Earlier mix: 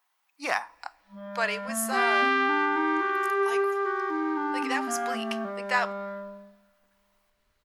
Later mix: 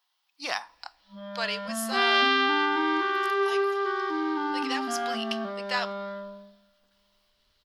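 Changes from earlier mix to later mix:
speech −4.5 dB
master: add flat-topped bell 4,000 Hz +11 dB 1.1 octaves

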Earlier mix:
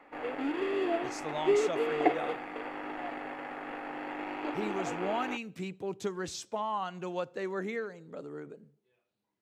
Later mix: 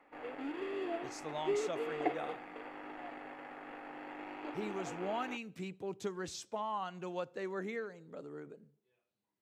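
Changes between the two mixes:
speech −4.5 dB
background −8.0 dB

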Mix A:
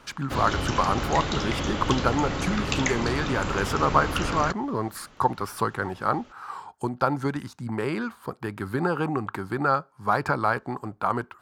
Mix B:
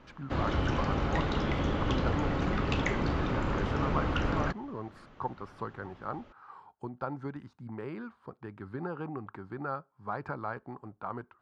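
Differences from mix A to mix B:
speech −10.5 dB
master: add head-to-tape spacing loss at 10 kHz 26 dB

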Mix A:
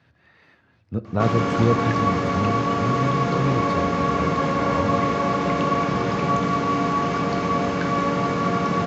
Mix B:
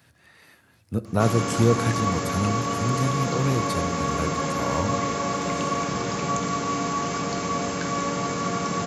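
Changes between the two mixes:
background −5.5 dB
master: remove high-frequency loss of the air 220 metres

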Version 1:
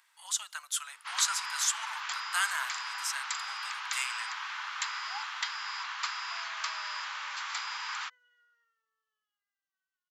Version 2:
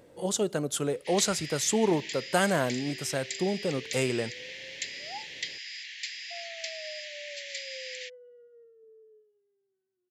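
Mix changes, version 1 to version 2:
first sound: add Butterworth high-pass 1,800 Hz 96 dB per octave
second sound −12.0 dB
master: remove Butterworth high-pass 1,000 Hz 48 dB per octave

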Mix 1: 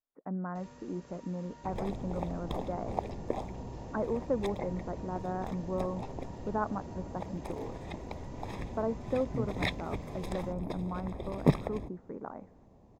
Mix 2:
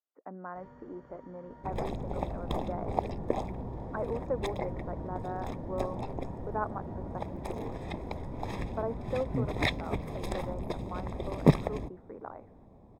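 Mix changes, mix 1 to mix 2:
speech: add high-pass filter 360 Hz 12 dB per octave
first sound: add Savitzky-Golay smoothing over 41 samples
second sound +3.5 dB

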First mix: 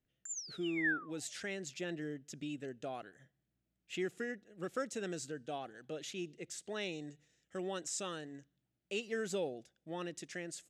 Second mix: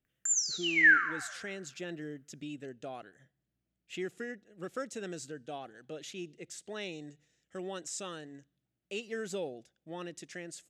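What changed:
background +11.5 dB
reverb: on, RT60 1.3 s

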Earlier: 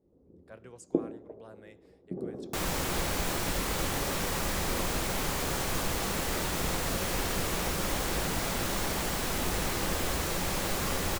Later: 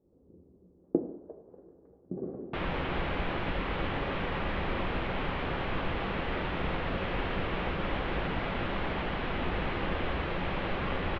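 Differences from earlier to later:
speech: muted
master: add Butterworth low-pass 3,200 Hz 36 dB per octave

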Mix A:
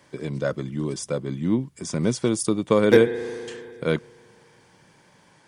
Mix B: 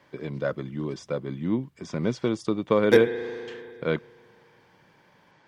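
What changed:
speech: add high-frequency loss of the air 190 metres
master: add low-shelf EQ 380 Hz −5 dB

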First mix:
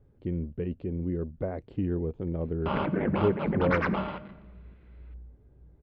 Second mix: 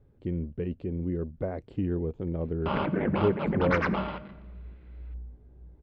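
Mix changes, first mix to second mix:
second sound +5.5 dB
master: remove high-frequency loss of the air 85 metres

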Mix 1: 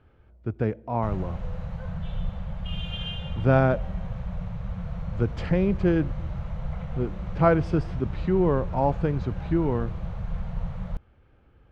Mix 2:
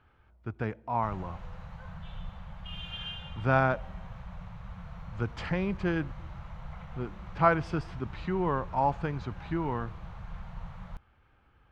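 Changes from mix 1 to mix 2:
background −4.0 dB
master: add low shelf with overshoot 700 Hz −7 dB, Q 1.5

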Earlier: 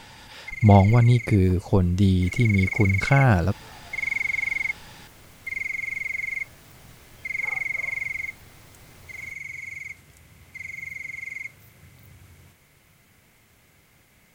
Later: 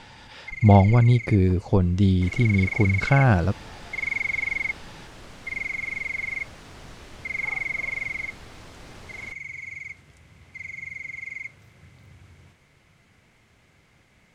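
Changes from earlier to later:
second sound +8.5 dB
master: add high-frequency loss of the air 71 metres

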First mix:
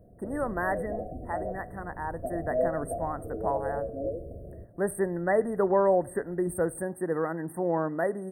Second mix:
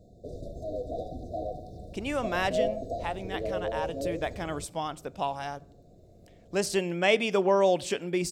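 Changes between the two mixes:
speech: entry +1.75 s
master: remove linear-phase brick-wall band-stop 2,000–8,300 Hz

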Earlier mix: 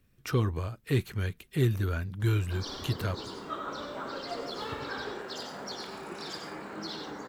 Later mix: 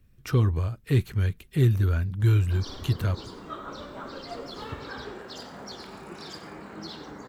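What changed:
background: send −8.0 dB
master: add low-shelf EQ 140 Hz +11 dB

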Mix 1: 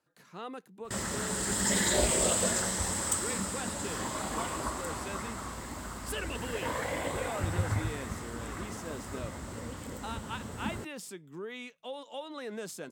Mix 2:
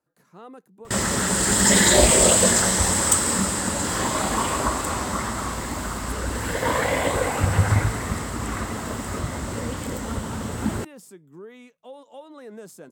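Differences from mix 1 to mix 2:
speech: add parametric band 3,200 Hz −10 dB 2 octaves
background +11.5 dB

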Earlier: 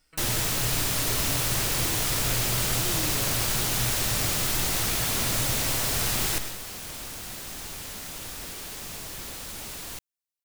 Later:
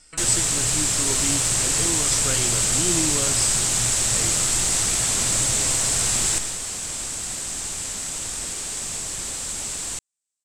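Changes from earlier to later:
speech +11.0 dB
second sound +3.5 dB
master: add low-pass with resonance 7,900 Hz, resonance Q 5.6

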